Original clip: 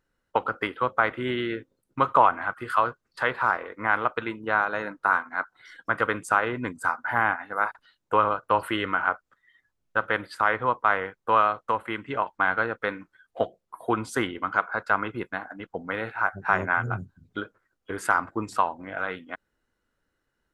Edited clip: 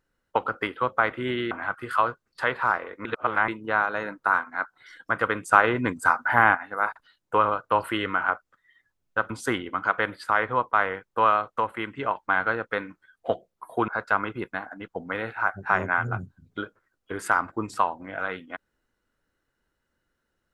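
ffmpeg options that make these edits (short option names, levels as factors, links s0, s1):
-filter_complex "[0:a]asplit=9[s0][s1][s2][s3][s4][s5][s6][s7][s8];[s0]atrim=end=1.512[s9];[s1]atrim=start=2.298:end=3.842[s10];[s2]atrim=start=3.838:end=4.272,asetpts=PTS-STARTPTS,areverse[s11];[s3]atrim=start=4.268:end=6.322[s12];[s4]atrim=start=6.318:end=7.342,asetpts=PTS-STARTPTS,volume=1.78[s13];[s5]atrim=start=7.338:end=10.092[s14];[s6]atrim=start=13.988:end=14.672[s15];[s7]atrim=start=10.088:end=13.992[s16];[s8]atrim=start=14.668[s17];[s9][s10]acrossfade=d=0.004:c1=hsin:c2=hsin[s18];[s18][s11]acrossfade=d=0.004:c1=hsin:c2=hsin[s19];[s19][s12]acrossfade=d=0.004:c1=hsin:c2=hsin[s20];[s20][s13]acrossfade=d=0.004:c1=hsin:c2=hsin[s21];[s21][s14]acrossfade=d=0.004:c1=hsin:c2=hsin[s22];[s22][s15]acrossfade=d=0.004:c1=hsin:c2=hsin[s23];[s23][s16]acrossfade=d=0.004:c1=hsin:c2=hsin[s24];[s24][s17]acrossfade=d=0.004:c1=hsin:c2=hsin"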